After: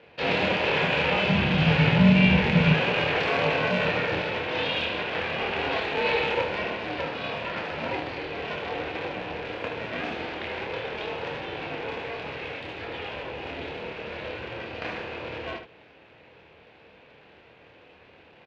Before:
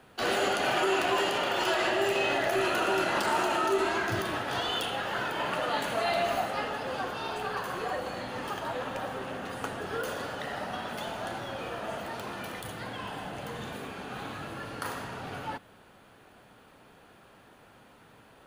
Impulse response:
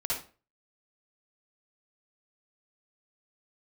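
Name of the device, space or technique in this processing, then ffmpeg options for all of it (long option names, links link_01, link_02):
ring modulator pedal into a guitar cabinet: -filter_complex "[0:a]aeval=exprs='val(0)*sgn(sin(2*PI*210*n/s))':channel_layout=same,highpass=80,equalizer=frequency=85:width_type=q:width=4:gain=3,equalizer=frequency=150:width_type=q:width=4:gain=3,equalizer=frequency=480:width_type=q:width=4:gain=7,equalizer=frequency=1200:width_type=q:width=4:gain=-7,equalizer=frequency=2500:width_type=q:width=4:gain=9,lowpass=frequency=4100:width=0.5412,lowpass=frequency=4100:width=1.3066,asettb=1/sr,asplit=3[link_01][link_02][link_03];[link_01]atrim=end=1.294[link_04];[link_02]atrim=start=1.29:end=2.74,asetpts=PTS-STARTPTS,afade=type=in:duration=0.004:curve=qsin,afade=type=out:start_time=1.446:duration=0.004:curve=qsin,lowshelf=frequency=270:width_type=q:width=1.5:gain=11.5[link_05];[link_03]atrim=start=2.736[link_06];[link_04][link_05]acrossfade=duration=0.004:curve1=hsin:curve2=qsin[link_07];[link_07][link_06]acrossfade=duration=0.004:curve1=qsin:curve2=hsin,aecho=1:1:26|76:0.562|0.398"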